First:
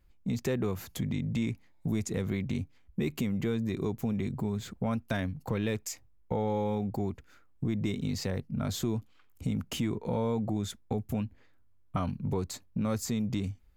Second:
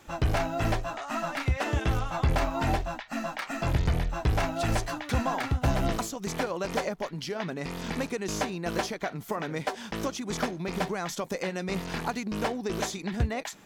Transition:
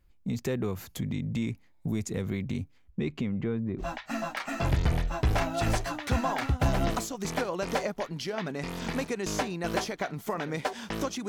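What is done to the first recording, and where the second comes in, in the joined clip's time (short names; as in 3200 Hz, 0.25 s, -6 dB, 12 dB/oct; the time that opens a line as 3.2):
first
2.9–3.84 LPF 6600 Hz -> 1000 Hz
3.81 switch to second from 2.83 s, crossfade 0.06 s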